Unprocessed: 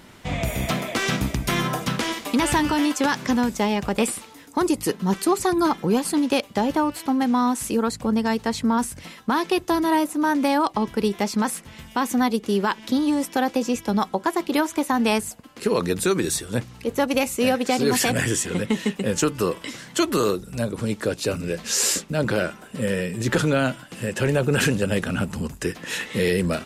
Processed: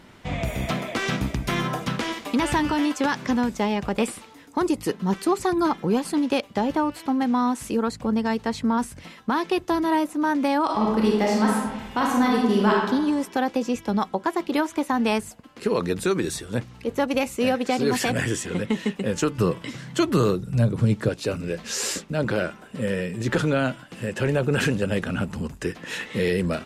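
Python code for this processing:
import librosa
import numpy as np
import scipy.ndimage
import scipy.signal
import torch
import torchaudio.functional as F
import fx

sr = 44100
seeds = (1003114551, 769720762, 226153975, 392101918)

y = fx.reverb_throw(x, sr, start_s=10.64, length_s=2.13, rt60_s=1.1, drr_db=-3.0)
y = fx.peak_eq(y, sr, hz=130.0, db=13.0, octaves=1.1, at=(19.38, 21.09))
y = fx.high_shelf(y, sr, hz=6200.0, db=-9.5)
y = y * librosa.db_to_amplitude(-1.5)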